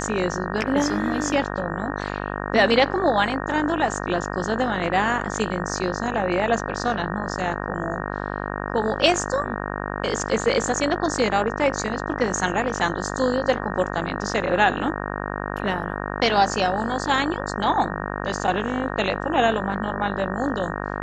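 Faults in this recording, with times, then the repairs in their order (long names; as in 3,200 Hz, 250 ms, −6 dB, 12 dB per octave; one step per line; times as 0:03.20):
mains buzz 50 Hz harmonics 37 −29 dBFS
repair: hum removal 50 Hz, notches 37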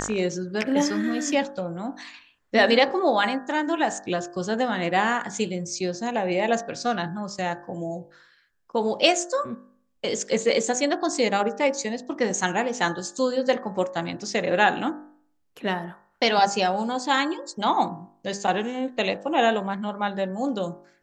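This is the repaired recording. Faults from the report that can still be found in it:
none of them is left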